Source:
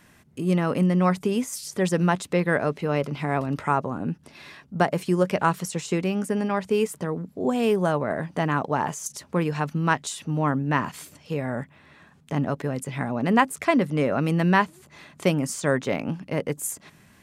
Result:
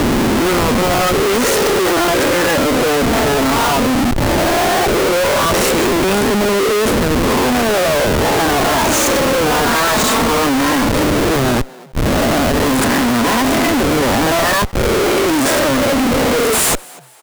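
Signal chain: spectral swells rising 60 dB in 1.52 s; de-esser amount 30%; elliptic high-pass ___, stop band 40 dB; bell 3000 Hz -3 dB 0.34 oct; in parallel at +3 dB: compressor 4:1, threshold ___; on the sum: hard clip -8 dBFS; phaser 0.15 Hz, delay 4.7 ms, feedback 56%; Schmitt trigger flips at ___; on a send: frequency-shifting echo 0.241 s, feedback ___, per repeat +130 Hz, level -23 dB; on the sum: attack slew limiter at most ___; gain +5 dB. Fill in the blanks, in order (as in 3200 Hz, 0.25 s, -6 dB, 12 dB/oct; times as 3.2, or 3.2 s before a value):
230 Hz, -31 dBFS, -25 dBFS, 38%, 560 dB/s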